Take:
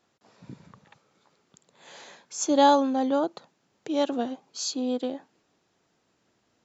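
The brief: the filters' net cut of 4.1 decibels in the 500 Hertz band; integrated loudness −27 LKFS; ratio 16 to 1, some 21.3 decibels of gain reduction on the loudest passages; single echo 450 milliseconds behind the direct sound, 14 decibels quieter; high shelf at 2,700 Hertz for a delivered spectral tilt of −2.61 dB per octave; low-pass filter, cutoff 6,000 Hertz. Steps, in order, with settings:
low-pass filter 6,000 Hz
parametric band 500 Hz −5 dB
high-shelf EQ 2,700 Hz +6.5 dB
downward compressor 16 to 1, threshold −36 dBFS
single-tap delay 450 ms −14 dB
level +14.5 dB

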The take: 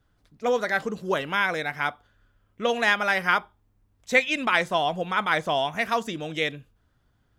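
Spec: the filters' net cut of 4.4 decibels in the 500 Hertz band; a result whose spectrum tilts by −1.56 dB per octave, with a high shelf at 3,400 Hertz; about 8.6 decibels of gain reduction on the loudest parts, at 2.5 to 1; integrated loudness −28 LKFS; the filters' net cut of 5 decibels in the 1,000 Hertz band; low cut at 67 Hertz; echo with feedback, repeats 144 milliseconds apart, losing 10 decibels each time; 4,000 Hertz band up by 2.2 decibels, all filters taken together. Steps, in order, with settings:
high-pass filter 67 Hz
parametric band 500 Hz −3.5 dB
parametric band 1,000 Hz −5.5 dB
high-shelf EQ 3,400 Hz −8 dB
parametric band 4,000 Hz +8.5 dB
downward compressor 2.5 to 1, threshold −29 dBFS
repeating echo 144 ms, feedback 32%, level −10 dB
level +3.5 dB

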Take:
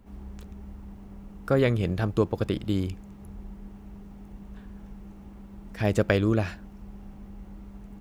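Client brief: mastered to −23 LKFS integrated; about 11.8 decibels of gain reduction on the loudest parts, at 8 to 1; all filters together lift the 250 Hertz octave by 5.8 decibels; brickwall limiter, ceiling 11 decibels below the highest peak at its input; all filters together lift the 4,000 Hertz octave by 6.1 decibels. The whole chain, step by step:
parametric band 250 Hz +7.5 dB
parametric band 4,000 Hz +8 dB
downward compressor 8 to 1, threshold −26 dBFS
level +16.5 dB
brickwall limiter −10 dBFS

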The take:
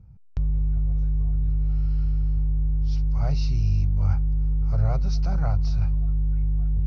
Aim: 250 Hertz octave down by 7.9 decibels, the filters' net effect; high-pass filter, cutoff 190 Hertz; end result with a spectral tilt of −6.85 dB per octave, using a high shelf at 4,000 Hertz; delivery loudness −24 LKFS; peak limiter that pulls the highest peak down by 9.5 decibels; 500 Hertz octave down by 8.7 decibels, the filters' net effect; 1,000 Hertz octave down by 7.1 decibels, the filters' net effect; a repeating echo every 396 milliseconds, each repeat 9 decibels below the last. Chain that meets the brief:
high-pass filter 190 Hz
parametric band 250 Hz −5.5 dB
parametric band 500 Hz −8 dB
parametric band 1,000 Hz −6 dB
high-shelf EQ 4,000 Hz −4 dB
brickwall limiter −34 dBFS
repeating echo 396 ms, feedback 35%, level −9 dB
level +19.5 dB

